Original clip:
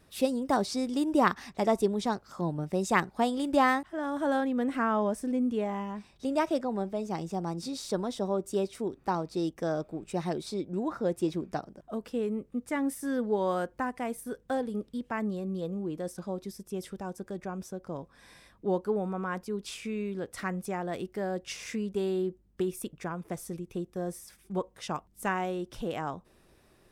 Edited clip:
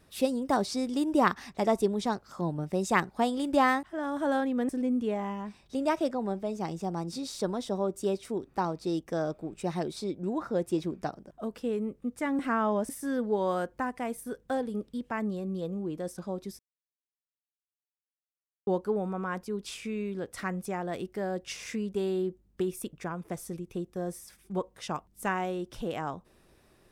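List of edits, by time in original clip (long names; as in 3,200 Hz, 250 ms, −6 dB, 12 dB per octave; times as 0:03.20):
0:04.69–0:05.19: move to 0:12.89
0:16.59–0:18.67: silence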